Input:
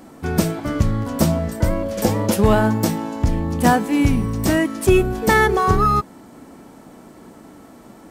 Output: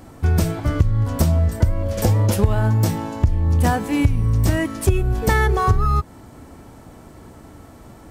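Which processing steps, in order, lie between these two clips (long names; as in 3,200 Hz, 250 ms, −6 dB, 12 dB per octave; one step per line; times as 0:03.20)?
low shelf with overshoot 140 Hz +11 dB, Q 1.5
downward compressor 6 to 1, threshold −13 dBFS, peak gain reduction 13 dB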